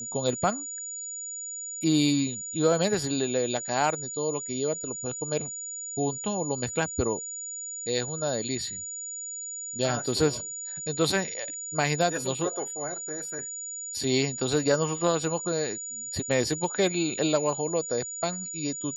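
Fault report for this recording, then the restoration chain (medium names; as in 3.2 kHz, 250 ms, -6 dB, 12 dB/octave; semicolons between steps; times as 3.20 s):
whine 6.9 kHz -34 dBFS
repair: band-stop 6.9 kHz, Q 30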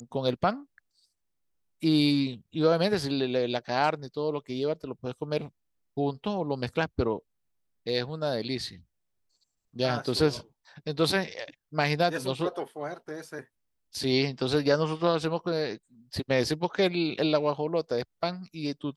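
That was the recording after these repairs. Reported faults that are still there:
nothing left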